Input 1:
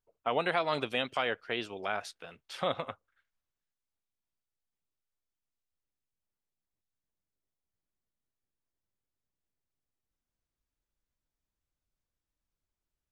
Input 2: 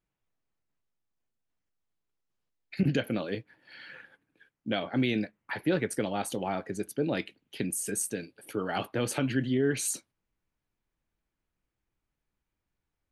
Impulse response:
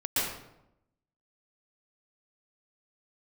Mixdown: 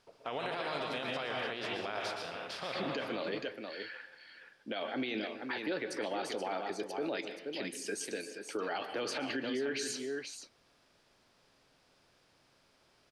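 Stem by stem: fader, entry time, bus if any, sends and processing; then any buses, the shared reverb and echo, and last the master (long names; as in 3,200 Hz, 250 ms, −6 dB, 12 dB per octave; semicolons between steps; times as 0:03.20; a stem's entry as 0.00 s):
−8.0 dB, 0.00 s, send −9 dB, echo send −9.5 dB, compressor on every frequency bin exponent 0.6; automatic ducking −9 dB, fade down 0.25 s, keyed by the second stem
0.0 dB, 0.00 s, send −22 dB, echo send −8.5 dB, three-way crossover with the lows and the highs turned down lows −23 dB, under 300 Hz, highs −21 dB, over 5,700 Hz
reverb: on, RT60 0.85 s, pre-delay 112 ms
echo: single-tap delay 477 ms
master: parametric band 4,900 Hz +9.5 dB 0.45 octaves; brickwall limiter −27 dBFS, peak gain reduction 11 dB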